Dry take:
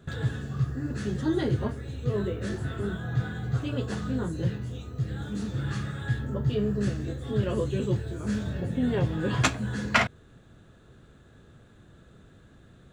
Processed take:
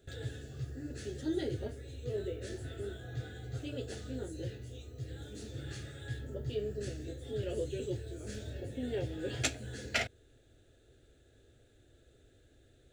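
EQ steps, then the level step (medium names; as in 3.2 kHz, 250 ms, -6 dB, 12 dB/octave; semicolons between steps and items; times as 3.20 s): treble shelf 5.1 kHz +4.5 dB; static phaser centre 440 Hz, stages 4; -6.0 dB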